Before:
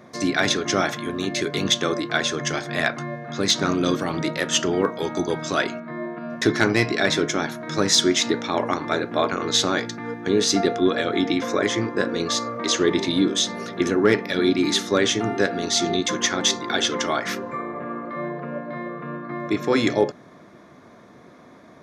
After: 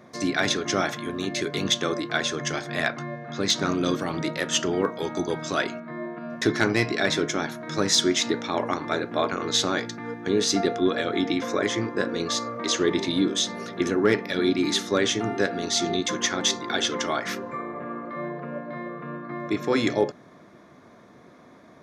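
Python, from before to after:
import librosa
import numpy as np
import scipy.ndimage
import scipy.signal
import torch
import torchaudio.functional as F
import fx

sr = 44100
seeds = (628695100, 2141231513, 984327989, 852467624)

y = fx.lowpass(x, sr, hz=7200.0, slope=12, at=(2.92, 3.5))
y = F.gain(torch.from_numpy(y), -3.0).numpy()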